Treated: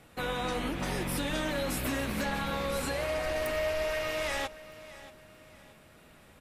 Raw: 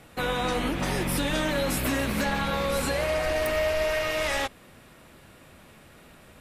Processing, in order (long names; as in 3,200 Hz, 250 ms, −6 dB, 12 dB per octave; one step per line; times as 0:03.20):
repeating echo 630 ms, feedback 37%, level −17 dB
level −5.5 dB